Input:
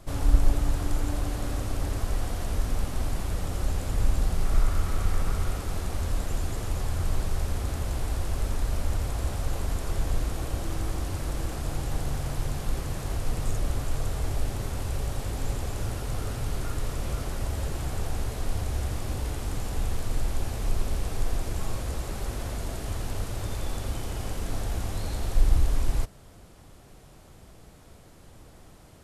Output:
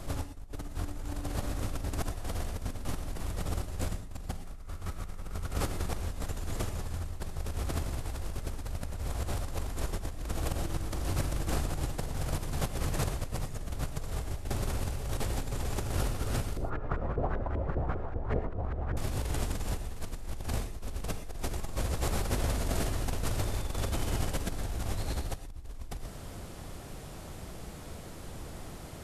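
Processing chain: negative-ratio compressor -34 dBFS, ratio -1; 16.57–18.97 LFO low-pass saw up 5.1 Hz 400–1800 Hz; non-linear reverb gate 0.14 s rising, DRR 10 dB

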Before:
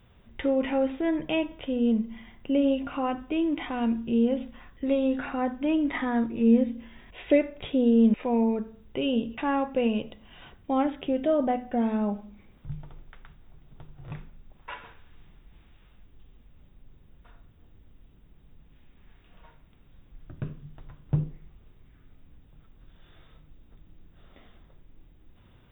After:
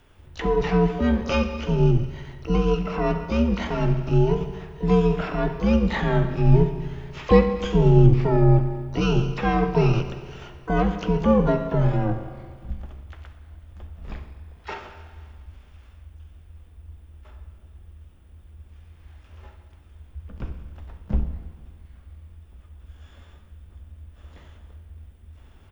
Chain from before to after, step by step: spring tank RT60 1.7 s, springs 31/58 ms, chirp 55 ms, DRR 7.5 dB; harmoniser -12 st -3 dB, +7 st -14 dB, +12 st -11 dB; frequency shift -92 Hz; gain +3 dB

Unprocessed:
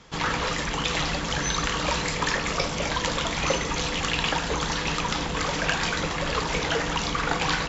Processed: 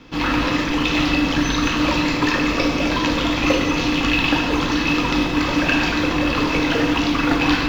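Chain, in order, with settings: octaver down 2 oct, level -3 dB; LPF 5400 Hz 24 dB/oct; small resonant body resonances 290/2600 Hz, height 14 dB, ringing for 50 ms; in parallel at -11.5 dB: short-mantissa float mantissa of 2-bit; on the sum: reverb, pre-delay 3 ms, DRR 2 dB

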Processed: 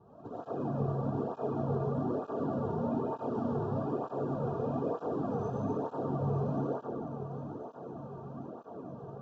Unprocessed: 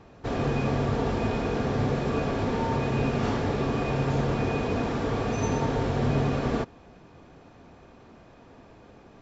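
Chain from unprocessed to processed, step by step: HPF 94 Hz; resonant high shelf 2900 Hz -13.5 dB, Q 1.5; reverse; compressor 5:1, threshold -35 dBFS, peak gain reduction 13 dB; reverse; tremolo saw up 7.3 Hz, depth 55%; Butterworth band-stop 2100 Hz, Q 0.74; on a send: diffused feedback echo 0.968 s, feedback 60%, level -11 dB; on the sum: digital reverb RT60 2.1 s, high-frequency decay 0.55×, pre-delay 55 ms, DRR -8.5 dB; tape flanging out of phase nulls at 1.1 Hz, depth 3.9 ms

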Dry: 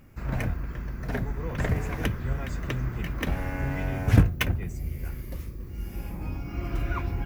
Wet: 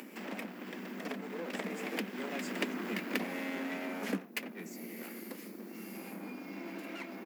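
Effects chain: minimum comb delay 0.4 ms; Doppler pass-by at 2.78, 11 m/s, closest 4.7 m; steep high-pass 190 Hz 96 dB/oct; upward compressor, threshold -37 dBFS; speakerphone echo 90 ms, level -18 dB; compressor 1.5:1, threshold -42 dBFS, peak gain reduction 5 dB; gain +5 dB

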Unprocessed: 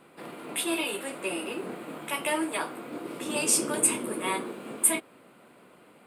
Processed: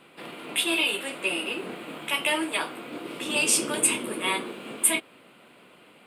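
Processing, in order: bell 3000 Hz +9.5 dB 1.1 oct

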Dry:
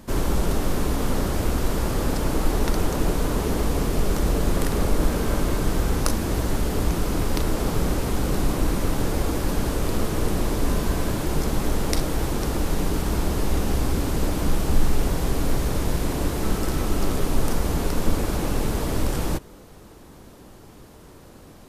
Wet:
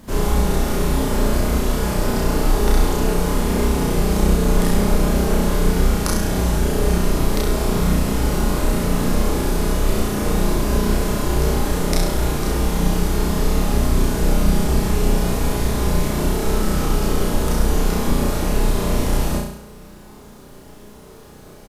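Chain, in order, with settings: doubler 29 ms -4.5 dB; flutter echo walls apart 5.8 m, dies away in 0.72 s; requantised 10-bit, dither none

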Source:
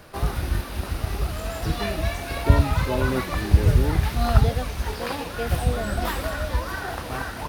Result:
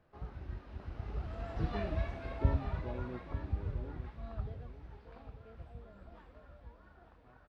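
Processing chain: Doppler pass-by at 1.81, 15 m/s, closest 6.8 m; tape spacing loss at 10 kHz 32 dB; echo 0.895 s -11 dB; gain -8 dB

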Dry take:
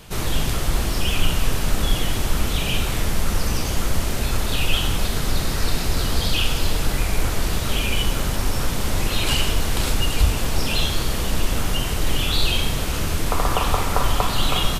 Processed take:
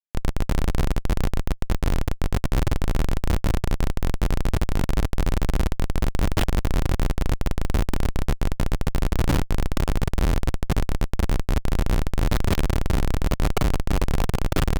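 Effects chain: diffused feedback echo 0.555 s, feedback 66%, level -12 dB; Schmitt trigger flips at -16 dBFS

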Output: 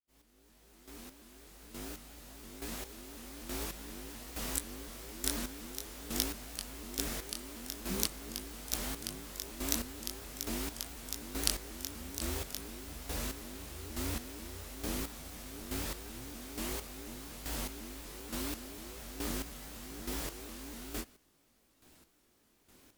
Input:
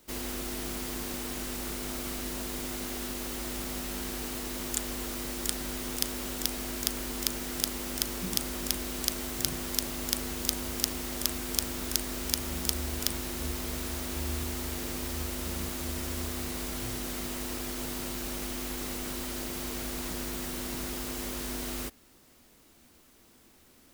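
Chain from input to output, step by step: opening faded in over 4.09 s; chorus 0.44 Hz, delay 18.5 ms, depth 5.3 ms; chopper 1.1 Hz, depth 65%, duty 25%; speed mistake 24 fps film run at 25 fps; shaped vibrato saw up 4.1 Hz, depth 250 cents; gain +1.5 dB

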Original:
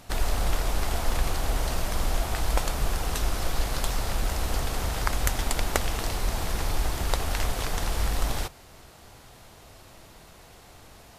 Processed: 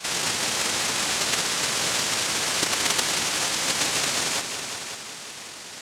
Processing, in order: HPF 1400 Hz 24 dB/oct; bell 2100 Hz +14 dB 2 oct; in parallel at -2 dB: compressor, threshold -41 dBFS, peak gain reduction 25 dB; on the sum: pitch shift +3.5 st; sample-rate reducer 2400 Hz, jitter 0%; noise vocoder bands 1; soft clip -10.5 dBFS, distortion -24 dB; time stretch by phase-locked vocoder 0.52×; multi-head echo 0.184 s, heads all three, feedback 41%, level -12 dB; gain +4 dB

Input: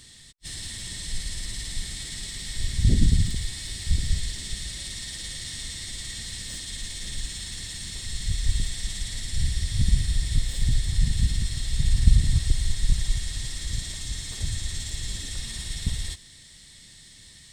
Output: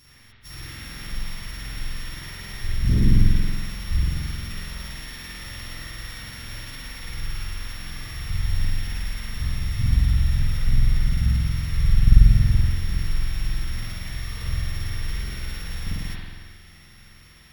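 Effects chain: sample sorter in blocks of 8 samples; spring tank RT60 1.6 s, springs 46 ms, chirp 30 ms, DRR -8 dB; gain -5.5 dB

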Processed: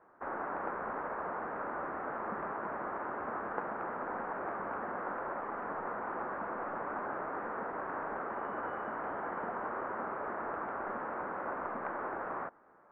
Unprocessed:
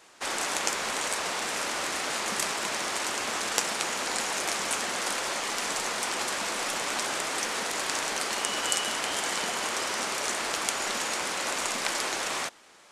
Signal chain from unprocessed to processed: steep low-pass 1500 Hz 36 dB/oct; gain -3.5 dB

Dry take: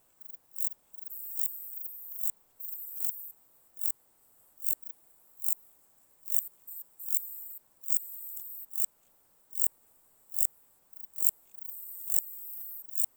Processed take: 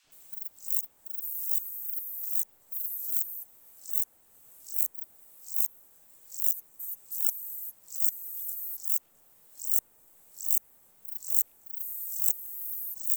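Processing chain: three bands offset in time mids, lows, highs 70/120 ms, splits 1300/5500 Hz; harmoniser -4 st -10 dB, +12 st -5 dB; three-band squash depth 40%; gain +2.5 dB

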